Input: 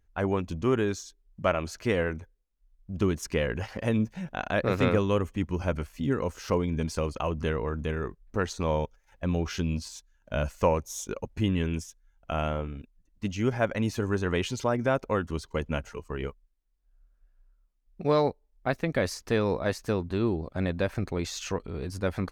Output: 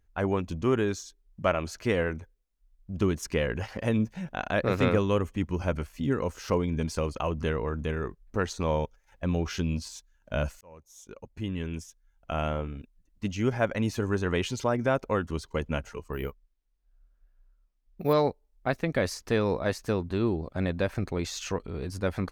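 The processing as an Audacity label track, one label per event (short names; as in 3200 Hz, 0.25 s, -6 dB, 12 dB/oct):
10.610000	12.510000	fade in
16.130000	18.130000	careless resampling rate divided by 3×, down filtered, up hold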